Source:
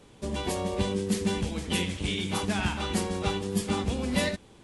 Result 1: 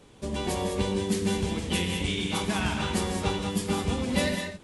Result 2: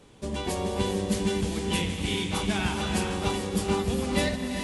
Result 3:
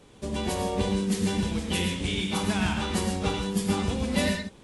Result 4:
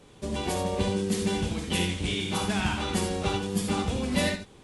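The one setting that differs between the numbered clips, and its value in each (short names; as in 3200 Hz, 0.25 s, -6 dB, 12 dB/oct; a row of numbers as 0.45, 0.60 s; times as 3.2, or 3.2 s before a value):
non-linear reverb, gate: 0.23, 0.46, 0.15, 0.1 s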